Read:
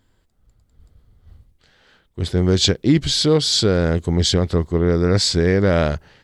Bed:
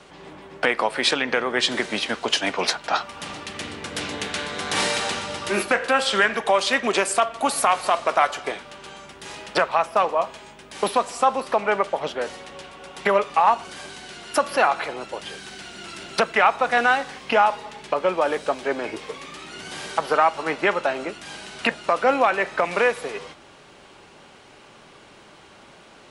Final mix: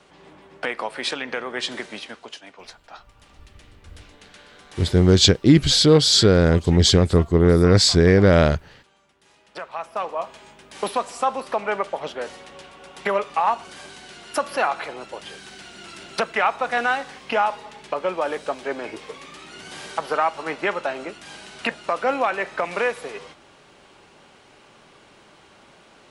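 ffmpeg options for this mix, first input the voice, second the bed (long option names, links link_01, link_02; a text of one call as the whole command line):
ffmpeg -i stem1.wav -i stem2.wav -filter_complex "[0:a]adelay=2600,volume=2dB[link_01];[1:a]volume=11dB,afade=type=out:start_time=1.68:duration=0.73:silence=0.199526,afade=type=in:start_time=9.44:duration=1.05:silence=0.141254[link_02];[link_01][link_02]amix=inputs=2:normalize=0" out.wav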